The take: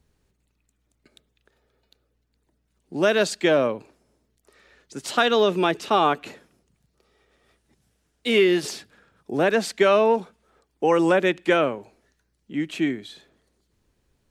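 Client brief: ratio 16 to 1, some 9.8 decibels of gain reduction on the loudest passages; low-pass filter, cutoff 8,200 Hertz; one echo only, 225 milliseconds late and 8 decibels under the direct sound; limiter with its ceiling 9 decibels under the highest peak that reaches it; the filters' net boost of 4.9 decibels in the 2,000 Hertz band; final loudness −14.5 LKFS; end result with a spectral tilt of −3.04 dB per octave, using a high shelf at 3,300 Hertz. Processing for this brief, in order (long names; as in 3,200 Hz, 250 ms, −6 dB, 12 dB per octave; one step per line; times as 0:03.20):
low-pass filter 8,200 Hz
parametric band 2,000 Hz +8.5 dB
high-shelf EQ 3,300 Hz −6.5 dB
downward compressor 16 to 1, threshold −22 dBFS
brickwall limiter −18.5 dBFS
single-tap delay 225 ms −8 dB
level +15.5 dB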